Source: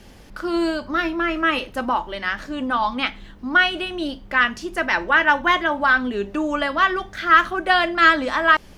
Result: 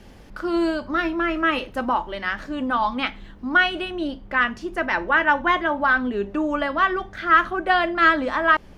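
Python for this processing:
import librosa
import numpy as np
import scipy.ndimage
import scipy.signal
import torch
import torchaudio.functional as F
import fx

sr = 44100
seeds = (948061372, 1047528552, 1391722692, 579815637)

y = fx.high_shelf(x, sr, hz=3000.0, db=fx.steps((0.0, -6.5), (3.9, -11.5)))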